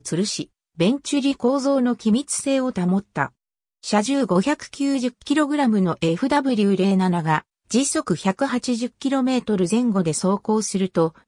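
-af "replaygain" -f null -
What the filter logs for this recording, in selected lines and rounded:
track_gain = +2.4 dB
track_peak = 0.377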